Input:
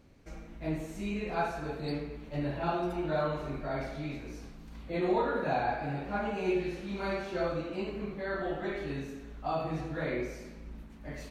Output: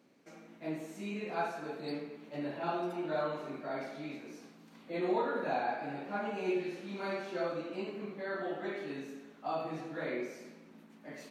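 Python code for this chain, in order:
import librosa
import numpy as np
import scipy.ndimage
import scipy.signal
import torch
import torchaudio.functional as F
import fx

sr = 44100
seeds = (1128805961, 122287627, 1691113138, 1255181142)

y = scipy.signal.sosfilt(scipy.signal.butter(4, 190.0, 'highpass', fs=sr, output='sos'), x)
y = F.gain(torch.from_numpy(y), -3.0).numpy()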